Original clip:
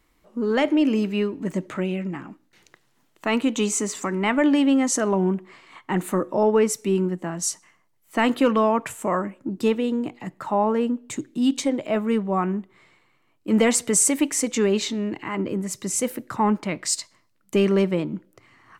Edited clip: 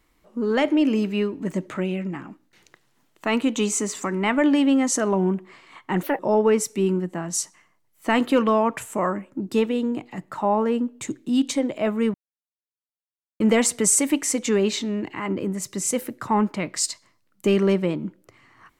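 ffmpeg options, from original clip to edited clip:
ffmpeg -i in.wav -filter_complex "[0:a]asplit=5[link_01][link_02][link_03][link_04][link_05];[link_01]atrim=end=6.034[link_06];[link_02]atrim=start=6.03:end=6.28,asetpts=PTS-STARTPTS,asetrate=68355,aresample=44100[link_07];[link_03]atrim=start=6.276:end=12.23,asetpts=PTS-STARTPTS,afade=type=out:start_time=5.95:duration=0.004:curve=hsin[link_08];[link_04]atrim=start=12.23:end=13.49,asetpts=PTS-STARTPTS,volume=0[link_09];[link_05]atrim=start=13.49,asetpts=PTS-STARTPTS,afade=type=in:duration=0.004:curve=hsin[link_10];[link_06][link_07]acrossfade=duration=0.004:curve1=hsin:curve2=hsin[link_11];[link_08][link_09][link_10]concat=n=3:v=0:a=1[link_12];[link_11][link_12]acrossfade=duration=0.004:curve1=hsin:curve2=hsin" out.wav

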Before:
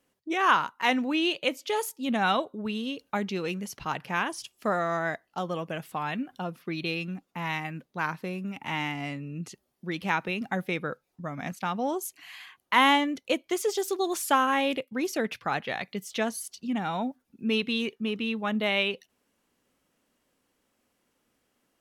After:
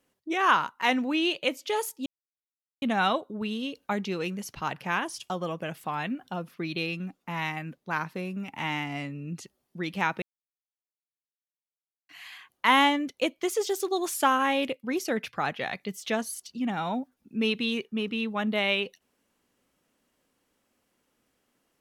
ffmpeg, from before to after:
ffmpeg -i in.wav -filter_complex "[0:a]asplit=5[link_01][link_02][link_03][link_04][link_05];[link_01]atrim=end=2.06,asetpts=PTS-STARTPTS,afade=type=out:start_time=2.056:duration=0.004:curve=hsin,apad=pad_dur=0.76[link_06];[link_02]atrim=start=2.06:end=4.542,asetpts=PTS-STARTPTS,afade=type=in:duration=0.004:curve=hsin[link_07];[link_03]atrim=start=5.378:end=10.3,asetpts=PTS-STARTPTS,afade=type=out:start_time=4.918:duration=0.004:curve=hsin[link_08];[link_04]atrim=start=10.3:end=12.17,asetpts=PTS-STARTPTS,volume=0[link_09];[link_05]atrim=start=12.17,asetpts=PTS-STARTPTS,afade=type=in:duration=0.004:curve=hsin[link_10];[link_06][link_07]concat=n=2:v=0:a=1[link_11];[link_08][link_09][link_10]concat=n=3:v=0:a=1[link_12];[link_11][link_12]acrossfade=duration=0.004:curve1=hsin:curve2=hsin" out.wav

